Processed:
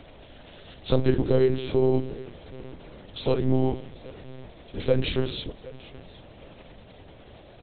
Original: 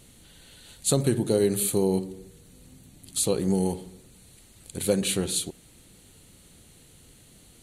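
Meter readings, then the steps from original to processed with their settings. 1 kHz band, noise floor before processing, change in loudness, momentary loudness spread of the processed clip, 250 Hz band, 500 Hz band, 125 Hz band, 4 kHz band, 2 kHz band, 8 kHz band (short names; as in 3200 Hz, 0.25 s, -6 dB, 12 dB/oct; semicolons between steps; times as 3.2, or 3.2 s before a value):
+2.0 dB, -55 dBFS, 0.0 dB, 21 LU, -0.5 dB, +2.0 dB, +2.5 dB, -2.5 dB, +2.0 dB, under -40 dB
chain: on a send: feedback echo 0.767 s, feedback 29%, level -20.5 dB; on the sum: buzz 60 Hz, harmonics 13, -52 dBFS -1 dB/oct; bit-crush 8-bit; de-hum 101.9 Hz, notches 2; monotone LPC vocoder at 8 kHz 130 Hz; gain +2.5 dB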